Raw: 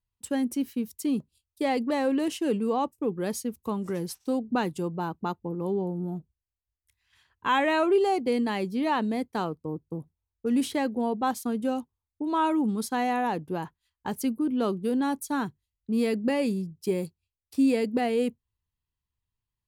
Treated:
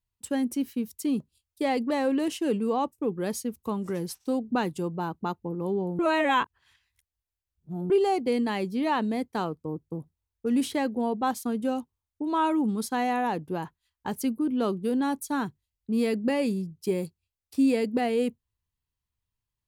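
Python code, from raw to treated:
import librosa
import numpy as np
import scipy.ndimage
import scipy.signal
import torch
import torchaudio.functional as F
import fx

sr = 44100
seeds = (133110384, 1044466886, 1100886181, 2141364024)

y = fx.edit(x, sr, fx.reverse_span(start_s=5.99, length_s=1.91), tone=tone)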